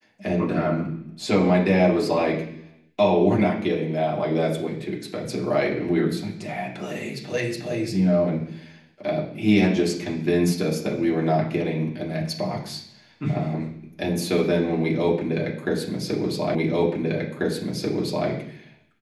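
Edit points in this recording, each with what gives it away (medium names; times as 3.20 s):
16.55 s: repeat of the last 1.74 s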